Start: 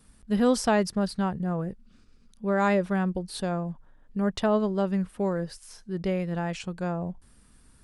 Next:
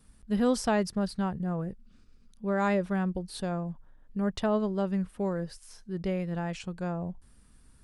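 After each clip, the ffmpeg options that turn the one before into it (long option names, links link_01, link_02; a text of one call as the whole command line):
ffmpeg -i in.wav -af "lowshelf=frequency=130:gain=4.5,volume=-4dB" out.wav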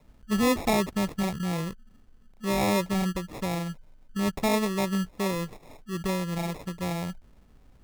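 ffmpeg -i in.wav -af "acrusher=samples=29:mix=1:aa=0.000001,volume=2dB" out.wav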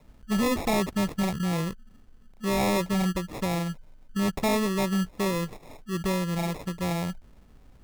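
ffmpeg -i in.wav -af "asoftclip=type=hard:threshold=-23.5dB,volume=2.5dB" out.wav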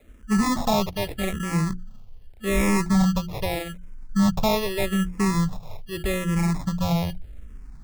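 ffmpeg -i in.wav -filter_complex "[0:a]bandreject=frequency=60:width_type=h:width=6,bandreject=frequency=120:width_type=h:width=6,bandreject=frequency=180:width_type=h:width=6,bandreject=frequency=240:width_type=h:width=6,bandreject=frequency=300:width_type=h:width=6,bandreject=frequency=360:width_type=h:width=6,asubboost=boost=3:cutoff=170,asplit=2[link_01][link_02];[link_02]afreqshift=-0.82[link_03];[link_01][link_03]amix=inputs=2:normalize=1,volume=6dB" out.wav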